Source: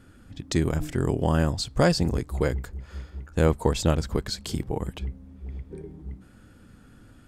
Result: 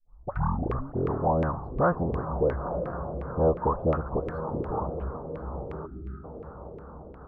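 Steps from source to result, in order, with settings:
turntable start at the beginning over 0.95 s
all-pass dispersion highs, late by 49 ms, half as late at 1,400 Hz
on a send: feedback delay with all-pass diffusion 961 ms, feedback 52%, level −11 dB
on the sum: gain on a spectral selection 0:05.86–0:06.24, 420–1,200 Hz −27 dB
drawn EQ curve 330 Hz 0 dB, 1,200 Hz +8 dB, 2,300 Hz −23 dB, 7,000 Hz −26 dB, 12,000 Hz +12 dB
in parallel at −2 dB: brickwall limiter −23 dBFS, peak gain reduction 16 dB
on the sum: auto-filter low-pass saw down 2.8 Hz 430–2,200 Hz
level −8 dB

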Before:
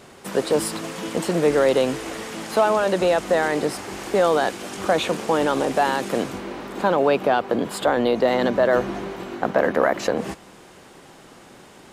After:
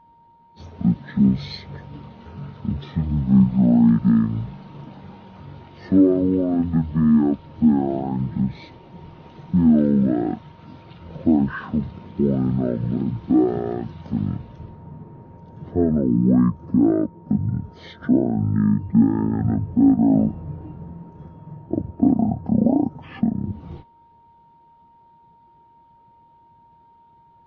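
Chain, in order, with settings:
change of speed 0.434×
steady tone 930 Hz −41 dBFS
every bin expanded away from the loudest bin 1.5 to 1

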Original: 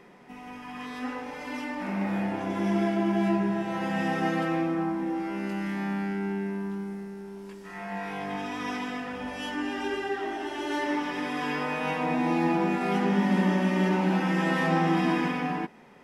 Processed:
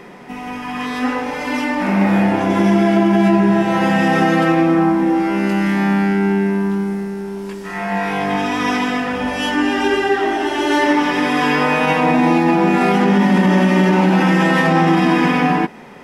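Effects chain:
boost into a limiter +19 dB
level −4.5 dB

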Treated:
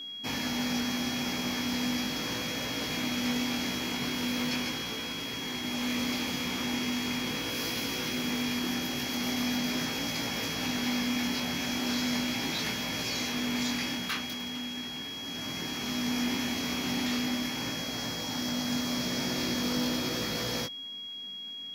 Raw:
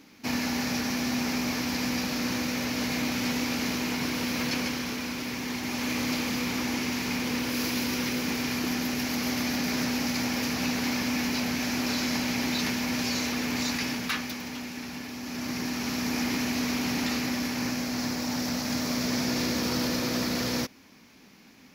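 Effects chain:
chorus effect 0.39 Hz, delay 18 ms, depth 3.8 ms
steady tone 3,300 Hz −38 dBFS

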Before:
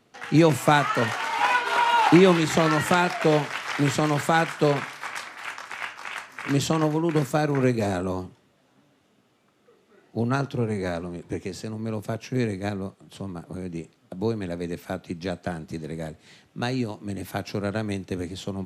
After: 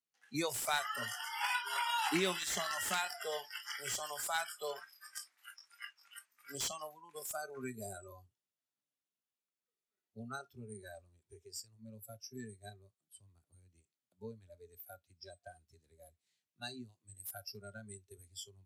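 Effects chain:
first-order pre-emphasis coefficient 0.9
noise reduction from a noise print of the clip's start 24 dB
slew-rate limiting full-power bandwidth 120 Hz

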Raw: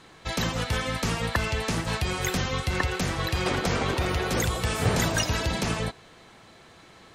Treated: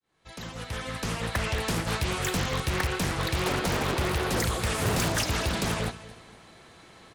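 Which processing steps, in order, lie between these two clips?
fade in at the beginning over 1.62 s
repeating echo 235 ms, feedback 34%, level −16.5 dB
in parallel at −6 dB: wrap-around overflow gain 18.5 dB
on the sum: parametric band 10,000 Hz +6.5 dB 0.36 octaves
highs frequency-modulated by the lows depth 0.54 ms
level −4 dB

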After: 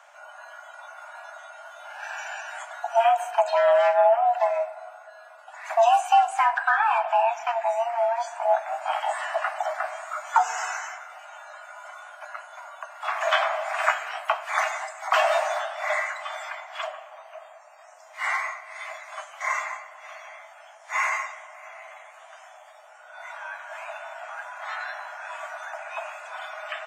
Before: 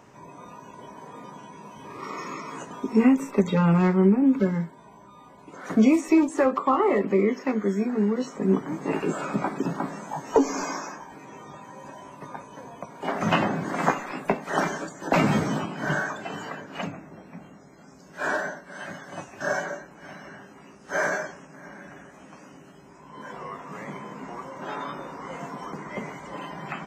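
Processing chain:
low-shelf EQ 73 Hz −8.5 dB
frequency shifter +460 Hz
rectangular room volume 3,500 cubic metres, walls mixed, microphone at 0.6 metres

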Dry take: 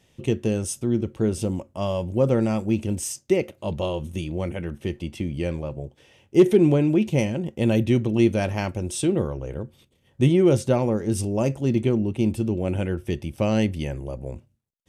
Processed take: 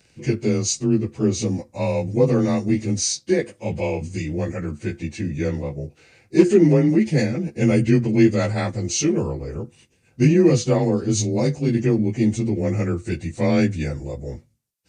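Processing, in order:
partials spread apart or drawn together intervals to 91%
high-shelf EQ 5,100 Hz +10.5 dB
level +4 dB

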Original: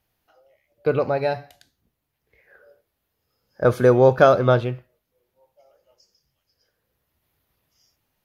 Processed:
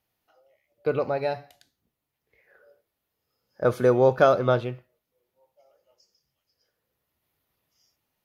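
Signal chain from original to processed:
low-shelf EQ 81 Hz −10 dB
notch filter 1,600 Hz, Q 22
level −4 dB

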